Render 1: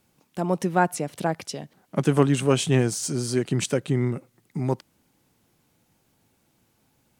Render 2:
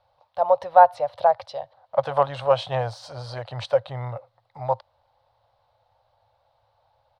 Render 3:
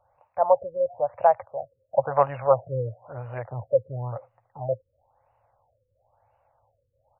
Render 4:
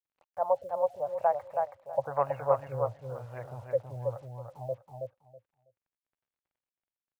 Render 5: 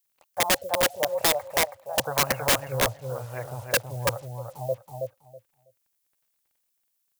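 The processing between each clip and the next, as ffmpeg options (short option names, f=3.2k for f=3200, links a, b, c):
-af "firequalizer=gain_entry='entry(110,0);entry(170,-27);entry(370,-24);entry(540,10);entry(890,10);entry(1400,-1);entry(2400,-9);entry(4000,1);entry(6800,-26)':delay=0.05:min_phase=1"
-af "afftfilt=real='re*lt(b*sr/1024,540*pow(3000/540,0.5+0.5*sin(2*PI*0.98*pts/sr)))':imag='im*lt(b*sr/1024,540*pow(3000/540,0.5+0.5*sin(2*PI*0.98*pts/sr)))':win_size=1024:overlap=0.75"
-filter_complex "[0:a]acrusher=bits=8:mix=0:aa=0.5,asplit=2[a][b];[b]aecho=0:1:324|648|972:0.631|0.114|0.0204[c];[a][c]amix=inputs=2:normalize=0,volume=-8dB"
-af "aeval=exprs='(mod(14.1*val(0)+1,2)-1)/14.1':c=same,crystalizer=i=3.5:c=0,volume=17dB,asoftclip=hard,volume=-17dB,volume=6dB"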